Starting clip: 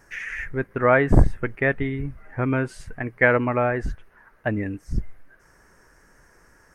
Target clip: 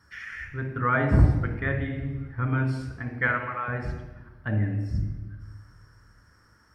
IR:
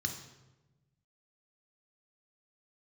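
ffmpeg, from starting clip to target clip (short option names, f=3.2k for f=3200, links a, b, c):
-filter_complex "[0:a]asettb=1/sr,asplit=3[a][b][c];[a]atrim=end=3.274[d];[b]atrim=start=3.27:end=3.68,asetpts=PTS-STARTPTS,afade=t=in:d=0.004:c=qsin,afade=t=out:st=0.406:d=0.004:c=qsin,highpass=880[e];[c]atrim=start=3.676[f];[d][e]acrossfade=d=0.004:c1=hsin:c2=qsin[g];[g][f]acrossfade=d=0.004:c1=qsin:c2=hsin[h];[1:a]atrim=start_sample=2205,asetrate=34839,aresample=44100[i];[h][i]afir=irnorm=-1:irlink=0,volume=-9dB"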